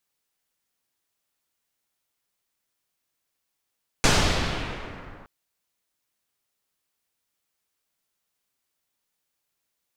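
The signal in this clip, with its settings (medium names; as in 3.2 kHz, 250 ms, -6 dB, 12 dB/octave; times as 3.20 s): swept filtered noise pink, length 1.22 s lowpass, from 6.9 kHz, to 1.4 kHz, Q 1.1, exponential, gain ramp -29 dB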